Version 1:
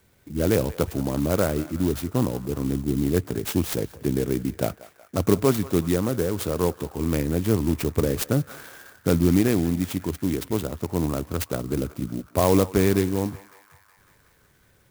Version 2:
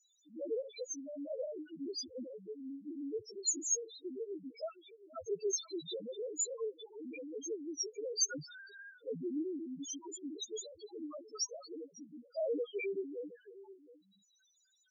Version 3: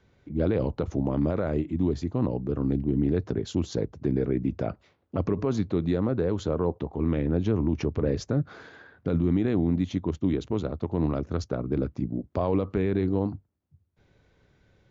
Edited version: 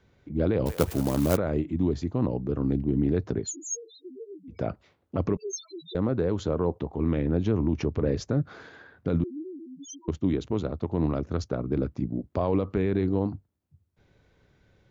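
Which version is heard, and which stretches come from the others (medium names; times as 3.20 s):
3
0.66–1.37 s: from 1
3.45–4.55 s: from 2, crossfade 0.16 s
5.37–5.95 s: from 2
9.24–10.08 s: from 2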